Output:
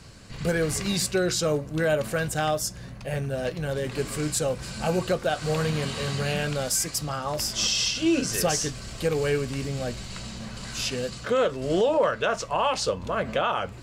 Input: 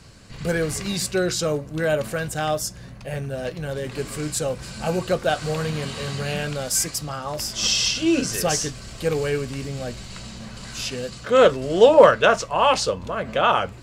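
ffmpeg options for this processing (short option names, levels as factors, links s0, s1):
-af "alimiter=limit=0.188:level=0:latency=1:release=250"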